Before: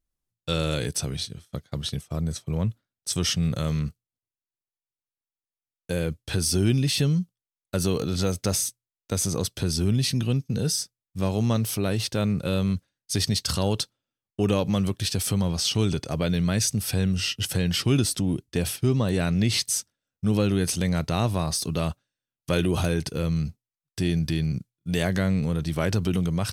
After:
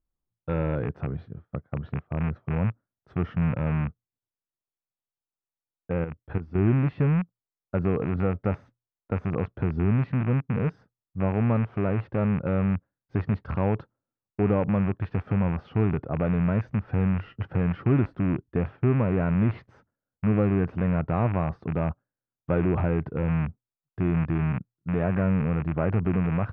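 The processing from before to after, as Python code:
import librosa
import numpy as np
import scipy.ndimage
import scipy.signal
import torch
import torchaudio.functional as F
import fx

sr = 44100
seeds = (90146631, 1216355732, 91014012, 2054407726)

y = fx.rattle_buzz(x, sr, strikes_db=-26.0, level_db=-14.0)
y = fx.level_steps(y, sr, step_db=11, at=(6.04, 6.58))
y = scipy.signal.sosfilt(scipy.signal.butter(4, 1400.0, 'lowpass', fs=sr, output='sos'), y)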